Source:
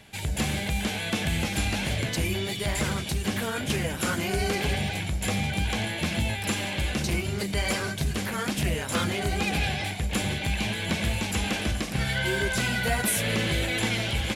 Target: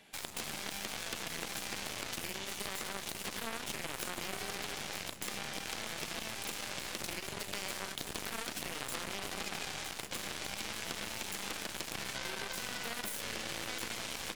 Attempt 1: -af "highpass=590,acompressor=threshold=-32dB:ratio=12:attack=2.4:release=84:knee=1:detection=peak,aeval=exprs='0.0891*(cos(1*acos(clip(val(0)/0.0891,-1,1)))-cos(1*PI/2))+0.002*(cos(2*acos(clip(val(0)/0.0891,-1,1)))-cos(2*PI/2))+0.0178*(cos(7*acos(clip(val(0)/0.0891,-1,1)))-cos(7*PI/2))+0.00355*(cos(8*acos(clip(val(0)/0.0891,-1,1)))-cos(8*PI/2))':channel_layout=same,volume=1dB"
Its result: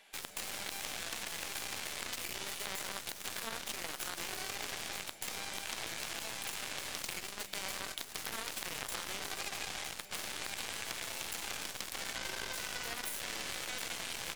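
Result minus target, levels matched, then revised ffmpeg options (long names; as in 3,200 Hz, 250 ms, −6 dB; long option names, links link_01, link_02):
250 Hz band −5.5 dB
-af "highpass=220,acompressor=threshold=-32dB:ratio=12:attack=2.4:release=84:knee=1:detection=peak,aeval=exprs='0.0891*(cos(1*acos(clip(val(0)/0.0891,-1,1)))-cos(1*PI/2))+0.002*(cos(2*acos(clip(val(0)/0.0891,-1,1)))-cos(2*PI/2))+0.0178*(cos(7*acos(clip(val(0)/0.0891,-1,1)))-cos(7*PI/2))+0.00355*(cos(8*acos(clip(val(0)/0.0891,-1,1)))-cos(8*PI/2))':channel_layout=same,volume=1dB"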